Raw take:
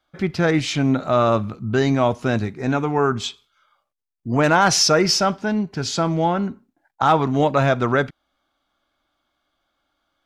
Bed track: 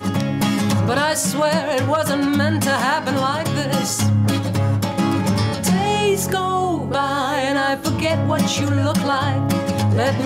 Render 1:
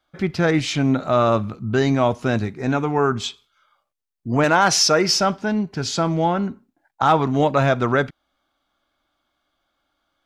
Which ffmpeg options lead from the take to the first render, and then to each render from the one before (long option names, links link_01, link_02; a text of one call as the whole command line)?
ffmpeg -i in.wav -filter_complex "[0:a]asettb=1/sr,asplit=3[link_01][link_02][link_03];[link_01]atrim=end=4.444[link_04];[link_02]atrim=start=4.44:end=5.14,asetpts=PTS-STARTPTS,afade=type=in:duration=0.004:curve=qsin,afade=type=out:start_time=0.696:duration=0.004:curve=qsin,highpass=frequency=190:poles=1[link_05];[link_03]atrim=start=5.136[link_06];[link_04][link_05]acrossfade=duration=0.004:curve1=hsin:curve2=qsin[link_07];[link_07][link_06]acrossfade=duration=0.004:curve1=qsin:curve2=hsin" out.wav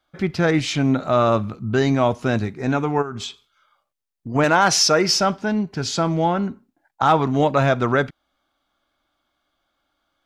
ffmpeg -i in.wav -filter_complex "[0:a]asplit=3[link_01][link_02][link_03];[link_01]afade=type=out:start_time=3.01:duration=0.02[link_04];[link_02]acompressor=threshold=-26dB:ratio=6:attack=3.2:release=140:knee=1:detection=peak,afade=type=in:start_time=3.01:duration=0.02,afade=type=out:start_time=4.34:duration=0.02[link_05];[link_03]afade=type=in:start_time=4.34:duration=0.02[link_06];[link_04][link_05][link_06]amix=inputs=3:normalize=0" out.wav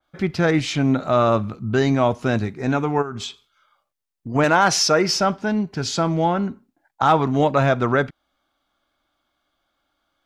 ffmpeg -i in.wav -af "adynamicequalizer=threshold=0.0316:dfrequency=2600:dqfactor=0.7:tfrequency=2600:tqfactor=0.7:attack=5:release=100:ratio=0.375:range=2:mode=cutabove:tftype=highshelf" out.wav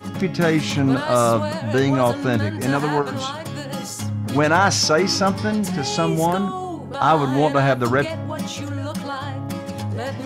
ffmpeg -i in.wav -i bed.wav -filter_complex "[1:a]volume=-9dB[link_01];[0:a][link_01]amix=inputs=2:normalize=0" out.wav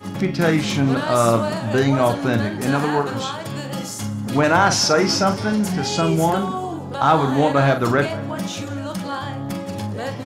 ffmpeg -i in.wav -filter_complex "[0:a]asplit=2[link_01][link_02];[link_02]adelay=43,volume=-8.5dB[link_03];[link_01][link_03]amix=inputs=2:normalize=0,asplit=6[link_04][link_05][link_06][link_07][link_08][link_09];[link_05]adelay=192,afreqshift=44,volume=-20dB[link_10];[link_06]adelay=384,afreqshift=88,volume=-24.4dB[link_11];[link_07]adelay=576,afreqshift=132,volume=-28.9dB[link_12];[link_08]adelay=768,afreqshift=176,volume=-33.3dB[link_13];[link_09]adelay=960,afreqshift=220,volume=-37.7dB[link_14];[link_04][link_10][link_11][link_12][link_13][link_14]amix=inputs=6:normalize=0" out.wav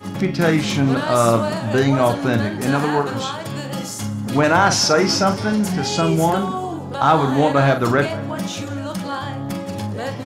ffmpeg -i in.wav -af "volume=1dB,alimiter=limit=-3dB:level=0:latency=1" out.wav